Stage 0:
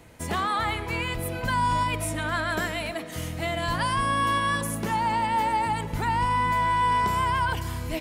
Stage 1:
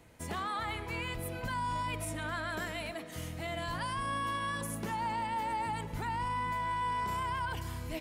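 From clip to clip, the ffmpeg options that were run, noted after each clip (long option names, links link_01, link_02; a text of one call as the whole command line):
ffmpeg -i in.wav -af "alimiter=limit=-19.5dB:level=0:latency=1:release=16,volume=-8dB" out.wav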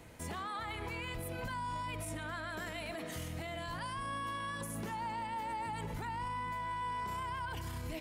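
ffmpeg -i in.wav -af "alimiter=level_in=13dB:limit=-24dB:level=0:latency=1:release=60,volume=-13dB,volume=4.5dB" out.wav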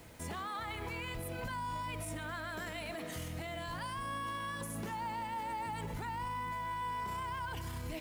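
ffmpeg -i in.wav -af "acrusher=bits=9:mix=0:aa=0.000001" out.wav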